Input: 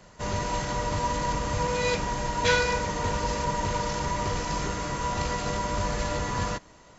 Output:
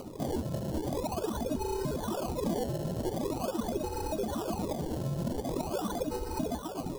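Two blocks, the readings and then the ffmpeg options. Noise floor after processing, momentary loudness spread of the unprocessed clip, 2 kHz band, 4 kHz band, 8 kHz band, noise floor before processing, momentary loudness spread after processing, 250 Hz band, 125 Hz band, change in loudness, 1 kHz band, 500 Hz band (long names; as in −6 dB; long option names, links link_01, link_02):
−40 dBFS, 6 LU, −20.0 dB, −12.0 dB, can't be measured, −53 dBFS, 2 LU, +1.0 dB, −5.0 dB, −6.0 dB, −10.5 dB, −3.0 dB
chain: -filter_complex "[0:a]aecho=1:1:2:0.99,asplit=2[link_01][link_02];[link_02]aecho=0:1:675:0.0944[link_03];[link_01][link_03]amix=inputs=2:normalize=0,lowpass=frequency=3000:width_type=q:width=0.5098,lowpass=frequency=3000:width_type=q:width=0.6013,lowpass=frequency=3000:width_type=q:width=0.9,lowpass=frequency=3000:width_type=q:width=2.563,afreqshift=-3500,aphaser=in_gain=1:out_gain=1:delay=3.2:decay=0.49:speed=1.3:type=sinusoidal,asplit=2[link_04][link_05];[link_05]aecho=0:1:113|639:0.251|0.224[link_06];[link_04][link_06]amix=inputs=2:normalize=0,acrusher=samples=25:mix=1:aa=0.000001:lfo=1:lforange=25:lforate=0.44,equalizer=frequency=2000:width=1.3:gain=-14.5,acompressor=threshold=-35dB:ratio=5,equalizer=frequency=260:width=0.49:gain=5.5,bandreject=frequency=50:width_type=h:width=6,bandreject=frequency=100:width_type=h:width=6,bandreject=frequency=150:width_type=h:width=6,bandreject=frequency=200:width_type=h:width=6,acompressor=mode=upward:threshold=-39dB:ratio=2.5"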